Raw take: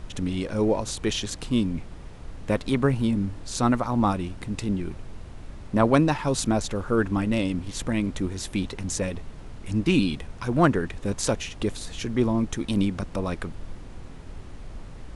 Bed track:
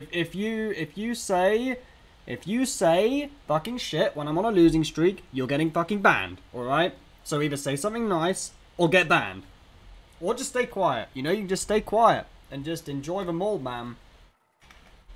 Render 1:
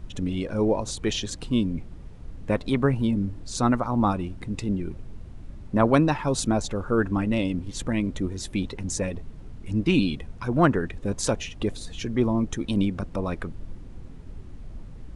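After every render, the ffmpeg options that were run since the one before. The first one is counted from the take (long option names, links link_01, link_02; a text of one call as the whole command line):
ffmpeg -i in.wav -af "afftdn=noise_reduction=9:noise_floor=-41" out.wav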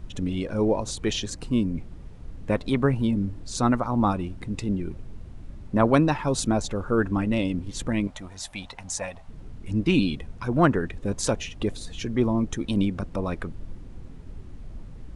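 ffmpeg -i in.wav -filter_complex "[0:a]asettb=1/sr,asplit=3[link_01][link_02][link_03];[link_01]atrim=end=1.254[link_04];[link_02]atrim=start=1.25:end=1.75,asetpts=PTS-STARTPTS,afade=type=in:duration=0.004:curve=qsin,afade=type=out:start_time=0.496:duration=0.004:curve=qsin,equalizer=frequency=3400:width_type=o:width=0.4:gain=-8.5[link_05];[link_03]atrim=start=1.746[link_06];[link_04][link_05]acrossfade=duration=0.004:curve1=hsin:curve2=qsin[link_07];[link_07][link_06]acrossfade=duration=0.004:curve1=qsin:curve2=hsin,asettb=1/sr,asplit=3[link_08][link_09][link_10];[link_08]atrim=end=8.074[link_11];[link_09]atrim=start=8.07:end=9.29,asetpts=PTS-STARTPTS,afade=type=in:duration=0.004:curve=qsin,afade=type=out:start_time=1.216:duration=0.004:curve=qsin,lowshelf=frequency=530:width_type=q:width=3:gain=-10.5[link_12];[link_10]atrim=start=9.286[link_13];[link_11][link_12]acrossfade=duration=0.004:curve1=hsin:curve2=qsin[link_14];[link_14][link_13]acrossfade=duration=0.004:curve1=qsin:curve2=hsin" out.wav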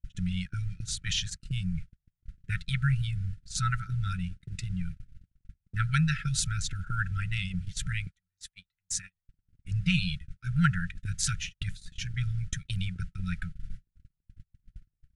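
ffmpeg -i in.wav -af "afftfilt=real='re*(1-between(b*sr/4096,190,1300))':imag='im*(1-between(b*sr/4096,190,1300))':win_size=4096:overlap=0.75,agate=range=-44dB:threshold=-33dB:ratio=16:detection=peak" out.wav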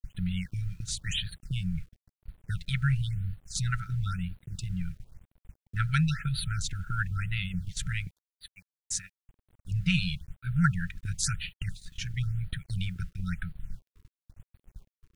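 ffmpeg -i in.wav -af "acrusher=bits=10:mix=0:aa=0.000001,afftfilt=real='re*(1-between(b*sr/1024,630*pow(6700/630,0.5+0.5*sin(2*PI*0.98*pts/sr))/1.41,630*pow(6700/630,0.5+0.5*sin(2*PI*0.98*pts/sr))*1.41))':imag='im*(1-between(b*sr/1024,630*pow(6700/630,0.5+0.5*sin(2*PI*0.98*pts/sr))/1.41,630*pow(6700/630,0.5+0.5*sin(2*PI*0.98*pts/sr))*1.41))':win_size=1024:overlap=0.75" out.wav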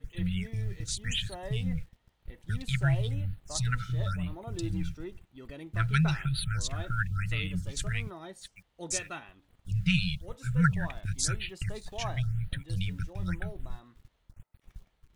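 ffmpeg -i in.wav -i bed.wav -filter_complex "[1:a]volume=-20dB[link_01];[0:a][link_01]amix=inputs=2:normalize=0" out.wav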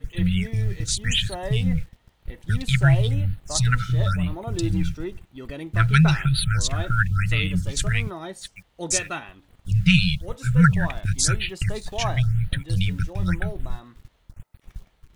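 ffmpeg -i in.wav -af "volume=9.5dB,alimiter=limit=-3dB:level=0:latency=1" out.wav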